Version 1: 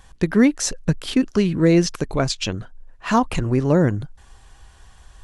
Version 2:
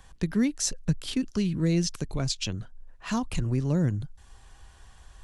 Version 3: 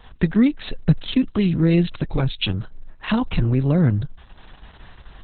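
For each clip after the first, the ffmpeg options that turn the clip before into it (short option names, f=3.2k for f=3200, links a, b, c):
-filter_complex "[0:a]acrossover=split=220|3000[a][b][c];[b]acompressor=threshold=-49dB:ratio=1.5[d];[a][d][c]amix=inputs=3:normalize=0,volume=-4dB"
-af "volume=9dB" -ar 48000 -c:a libopus -b:a 6k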